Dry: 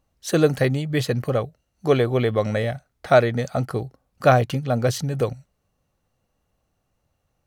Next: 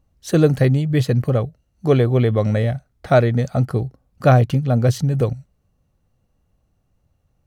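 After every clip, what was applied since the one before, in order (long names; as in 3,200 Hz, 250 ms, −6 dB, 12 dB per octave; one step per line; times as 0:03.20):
low-shelf EQ 300 Hz +11.5 dB
level −2 dB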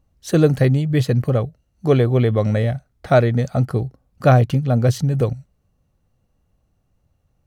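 no processing that can be heard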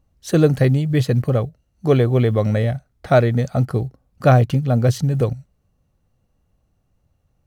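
floating-point word with a short mantissa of 6 bits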